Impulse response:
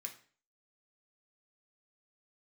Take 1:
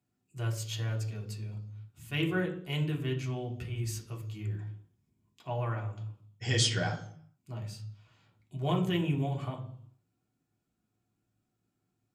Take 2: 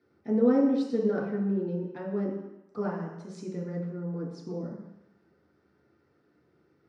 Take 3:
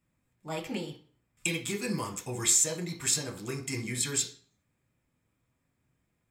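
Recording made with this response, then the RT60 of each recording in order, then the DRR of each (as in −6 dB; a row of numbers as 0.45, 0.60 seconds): 3; 0.65, 0.95, 0.45 seconds; −0.5, −5.0, 2.0 decibels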